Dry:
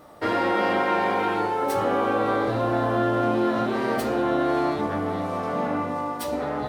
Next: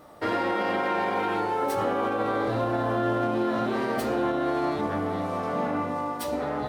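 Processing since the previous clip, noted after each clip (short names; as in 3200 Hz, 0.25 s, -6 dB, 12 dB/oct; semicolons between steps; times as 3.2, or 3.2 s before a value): limiter -16 dBFS, peak gain reduction 5 dB; gain -1.5 dB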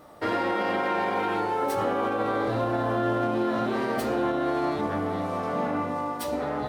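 nothing audible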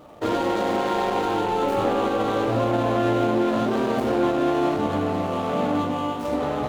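median filter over 25 samples; on a send at -12 dB: reverb RT60 4.3 s, pre-delay 0.204 s; on the sum: gain +5 dB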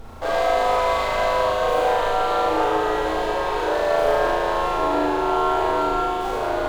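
frequency shift +200 Hz; added noise brown -38 dBFS; flutter echo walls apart 6.4 m, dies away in 1.5 s; gain -2 dB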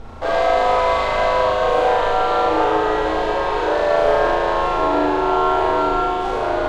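air absorption 70 m; gain +3.5 dB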